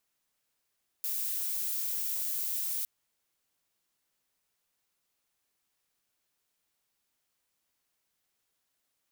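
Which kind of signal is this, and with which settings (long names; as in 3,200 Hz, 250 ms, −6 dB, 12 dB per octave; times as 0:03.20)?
noise violet, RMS −33 dBFS 1.81 s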